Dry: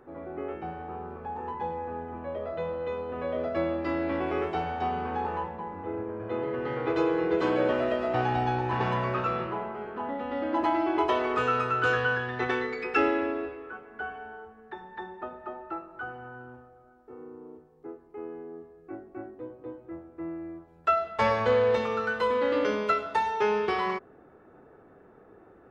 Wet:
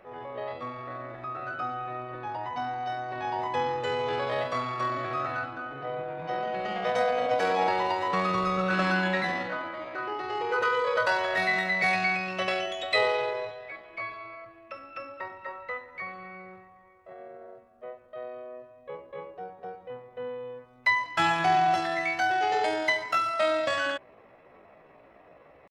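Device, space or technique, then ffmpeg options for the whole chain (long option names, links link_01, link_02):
chipmunk voice: -filter_complex "[0:a]asetrate=66075,aresample=44100,atempo=0.66742,asettb=1/sr,asplit=3[link_01][link_02][link_03];[link_01]atrim=end=8.574[link_04];[link_02]atrim=start=8.57:end=9.32,asetpts=PTS-STARTPTS,afade=type=in:duration=0.004:curve=qsin,afade=type=out:start_time=0.746:duration=0.004:curve=qsin,aecho=1:1:5.3:0.5,atrim=end_sample=33075[link_05];[link_03]atrim=start=9.316[link_06];[link_04][link_05]acrossfade=duration=0.004:curve1=hsin:curve2=qsin[link_07];[link_07][link_06]acrossfade=duration=0.004:curve1=qsin:curve2=hsin"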